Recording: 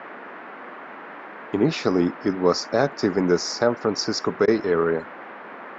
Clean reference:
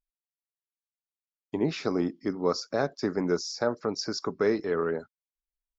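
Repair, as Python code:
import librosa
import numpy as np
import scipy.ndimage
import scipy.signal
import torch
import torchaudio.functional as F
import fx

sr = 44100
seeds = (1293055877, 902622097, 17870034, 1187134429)

y = fx.fix_interpolate(x, sr, at_s=(4.46,), length_ms=16.0)
y = fx.noise_reduce(y, sr, print_start_s=5.09, print_end_s=5.59, reduce_db=30.0)
y = fx.gain(y, sr, db=fx.steps((0.0, 0.0), (0.39, -7.0)))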